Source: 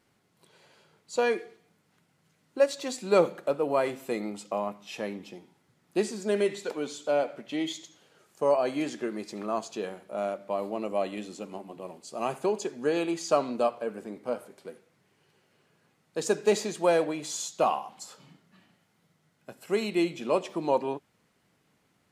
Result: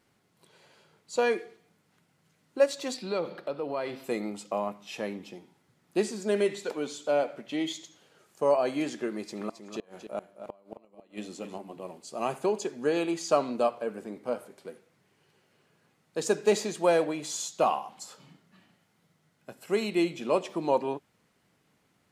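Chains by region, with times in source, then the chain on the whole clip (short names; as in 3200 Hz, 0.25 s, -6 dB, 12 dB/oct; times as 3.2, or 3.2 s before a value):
2.94–4.04 resonant high shelf 5700 Hz -7 dB, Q 3 + compressor 2:1, threshold -33 dBFS
9.14–11.58 flipped gate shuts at -22 dBFS, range -30 dB + echo 0.268 s -9 dB
whole clip: dry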